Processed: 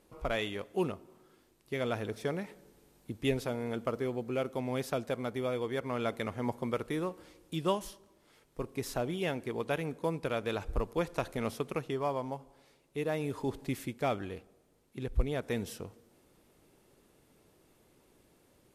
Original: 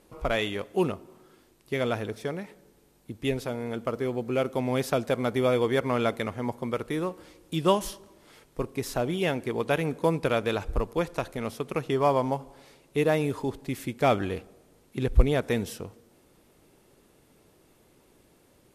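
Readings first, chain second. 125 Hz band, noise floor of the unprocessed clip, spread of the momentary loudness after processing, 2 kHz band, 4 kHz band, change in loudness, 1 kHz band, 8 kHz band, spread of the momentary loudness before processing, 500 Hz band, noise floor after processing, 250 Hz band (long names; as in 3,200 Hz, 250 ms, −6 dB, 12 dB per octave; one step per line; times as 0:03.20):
−7.0 dB, −62 dBFS, 9 LU, −6.5 dB, −6.5 dB, −7.0 dB, −7.5 dB, −6.0 dB, 10 LU, −7.0 dB, −67 dBFS, −6.5 dB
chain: speech leveller 0.5 s
level −6.5 dB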